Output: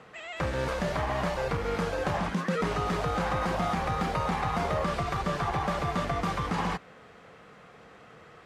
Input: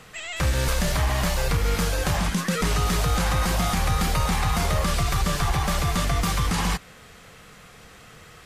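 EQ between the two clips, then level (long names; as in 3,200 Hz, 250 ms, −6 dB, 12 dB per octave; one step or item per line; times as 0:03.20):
resonant band-pass 550 Hz, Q 0.51
0.0 dB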